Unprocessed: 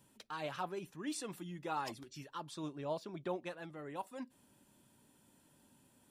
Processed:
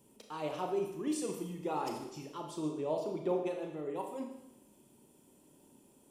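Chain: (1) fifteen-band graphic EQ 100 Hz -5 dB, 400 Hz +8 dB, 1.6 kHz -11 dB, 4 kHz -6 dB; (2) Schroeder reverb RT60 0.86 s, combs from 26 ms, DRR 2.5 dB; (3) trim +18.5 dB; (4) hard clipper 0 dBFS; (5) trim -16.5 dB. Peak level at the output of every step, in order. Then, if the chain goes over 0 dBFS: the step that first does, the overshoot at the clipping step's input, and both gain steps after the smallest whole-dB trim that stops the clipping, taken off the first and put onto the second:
-25.0 dBFS, -23.5 dBFS, -5.0 dBFS, -5.0 dBFS, -21.5 dBFS; nothing clips

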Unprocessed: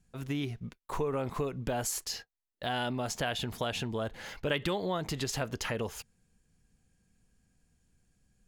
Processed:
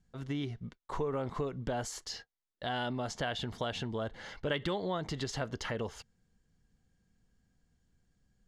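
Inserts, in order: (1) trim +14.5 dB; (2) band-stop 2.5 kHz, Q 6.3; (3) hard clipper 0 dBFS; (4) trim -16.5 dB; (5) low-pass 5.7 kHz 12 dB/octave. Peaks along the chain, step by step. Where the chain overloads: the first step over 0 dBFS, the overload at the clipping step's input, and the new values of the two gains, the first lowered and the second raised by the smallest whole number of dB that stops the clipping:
-3.0 dBFS, -2.5 dBFS, -2.5 dBFS, -19.0 dBFS, -19.0 dBFS; nothing clips

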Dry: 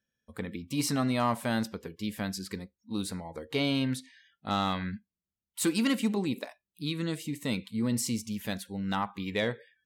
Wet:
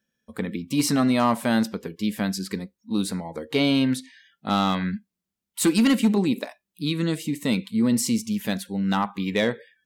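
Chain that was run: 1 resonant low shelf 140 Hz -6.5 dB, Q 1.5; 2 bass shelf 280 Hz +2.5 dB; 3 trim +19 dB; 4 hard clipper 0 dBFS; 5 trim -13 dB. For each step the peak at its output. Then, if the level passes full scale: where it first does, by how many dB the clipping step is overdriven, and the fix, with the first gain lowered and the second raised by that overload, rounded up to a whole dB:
-16.5 dBFS, -16.0 dBFS, +3.0 dBFS, 0.0 dBFS, -13.0 dBFS; step 3, 3.0 dB; step 3 +16 dB, step 5 -10 dB

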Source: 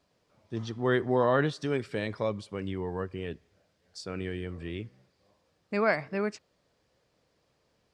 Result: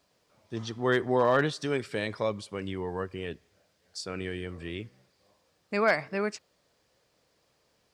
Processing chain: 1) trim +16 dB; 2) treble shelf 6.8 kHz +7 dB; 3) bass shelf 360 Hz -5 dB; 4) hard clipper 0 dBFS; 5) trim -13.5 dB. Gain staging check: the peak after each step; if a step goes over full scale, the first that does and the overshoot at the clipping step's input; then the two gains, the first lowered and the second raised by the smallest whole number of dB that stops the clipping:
+3.5 dBFS, +4.0 dBFS, +3.5 dBFS, 0.0 dBFS, -13.5 dBFS; step 1, 3.5 dB; step 1 +12 dB, step 5 -9.5 dB

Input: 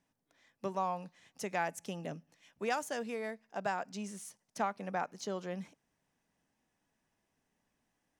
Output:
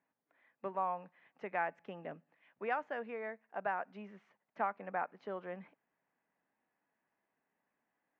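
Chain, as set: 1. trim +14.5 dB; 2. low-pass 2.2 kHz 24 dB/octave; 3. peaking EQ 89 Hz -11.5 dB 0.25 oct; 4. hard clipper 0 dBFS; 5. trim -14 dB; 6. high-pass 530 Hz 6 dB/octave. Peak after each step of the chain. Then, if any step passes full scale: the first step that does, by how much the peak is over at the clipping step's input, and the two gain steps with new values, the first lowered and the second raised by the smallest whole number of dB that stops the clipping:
-5.5 dBFS, -5.5 dBFS, -5.5 dBFS, -5.5 dBFS, -19.5 dBFS, -22.0 dBFS; nothing clips

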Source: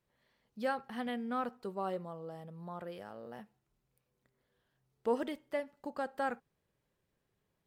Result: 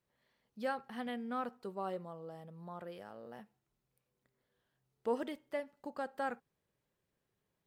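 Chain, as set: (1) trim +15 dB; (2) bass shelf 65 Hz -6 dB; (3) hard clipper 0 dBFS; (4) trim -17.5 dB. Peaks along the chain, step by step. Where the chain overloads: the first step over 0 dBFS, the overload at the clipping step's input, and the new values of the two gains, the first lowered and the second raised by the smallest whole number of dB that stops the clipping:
-6.0 dBFS, -6.0 dBFS, -6.0 dBFS, -23.5 dBFS; nothing clips

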